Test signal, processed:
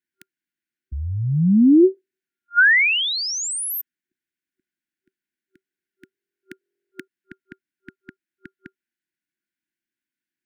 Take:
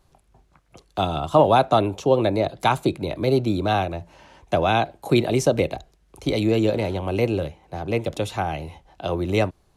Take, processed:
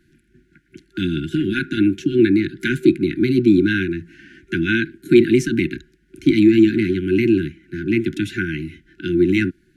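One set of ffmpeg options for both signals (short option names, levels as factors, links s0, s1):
-filter_complex "[0:a]apsyclip=5.62,afftfilt=real='re*(1-between(b*sr/4096,380,1400))':imag='im*(1-between(b*sr/4096,380,1400))':win_size=4096:overlap=0.75,acrossover=split=190 2000:gain=0.141 1 0.158[s0][s1][s2];[s0][s1][s2]amix=inputs=3:normalize=0,volume=0.841"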